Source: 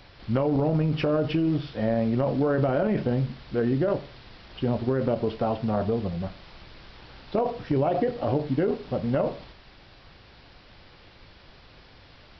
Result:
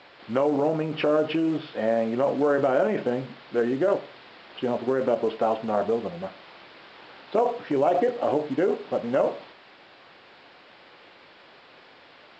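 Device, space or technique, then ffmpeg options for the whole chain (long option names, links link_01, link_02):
telephone: -af "highpass=340,lowpass=3400,volume=4dB" -ar 16000 -c:a pcm_mulaw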